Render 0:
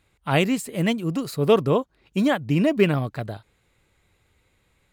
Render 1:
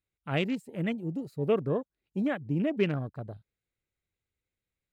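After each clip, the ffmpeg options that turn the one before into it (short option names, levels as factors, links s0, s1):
-af "equalizer=f=950:t=o:w=0.67:g=-7,afwtdn=0.0224,volume=0.398"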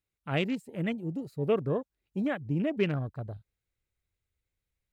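-af "asubboost=boost=2.5:cutoff=120"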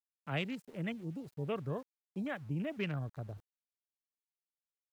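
-filter_complex "[0:a]acrossover=split=220|580|1400[s0][s1][s2][s3];[s1]acompressor=threshold=0.00891:ratio=6[s4];[s0][s4][s2][s3]amix=inputs=4:normalize=0,aeval=exprs='val(0)*gte(abs(val(0)),0.00251)':c=same,volume=0.562"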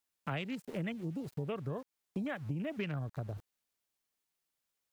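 -af "acompressor=threshold=0.00562:ratio=6,volume=3.16"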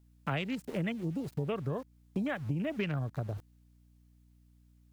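-af "aeval=exprs='val(0)+0.000562*(sin(2*PI*60*n/s)+sin(2*PI*2*60*n/s)/2+sin(2*PI*3*60*n/s)/3+sin(2*PI*4*60*n/s)/4+sin(2*PI*5*60*n/s)/5)':c=same,volume=1.58"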